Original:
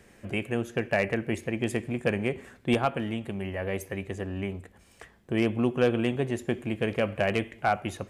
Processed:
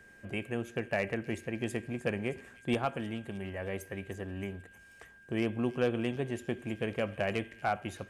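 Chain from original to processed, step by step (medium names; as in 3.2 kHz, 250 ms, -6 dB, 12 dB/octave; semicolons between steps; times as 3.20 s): feedback echo behind a high-pass 311 ms, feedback 64%, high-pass 3.9 kHz, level -12 dB; whistle 1.6 kHz -49 dBFS; trim -6 dB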